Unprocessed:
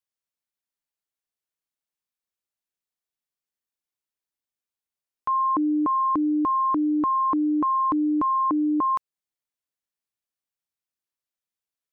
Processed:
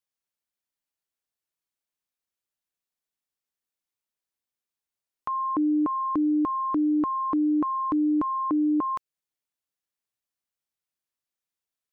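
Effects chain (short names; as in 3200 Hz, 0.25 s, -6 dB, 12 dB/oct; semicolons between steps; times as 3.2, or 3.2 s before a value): dynamic EQ 970 Hz, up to -6 dB, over -37 dBFS, Q 1.6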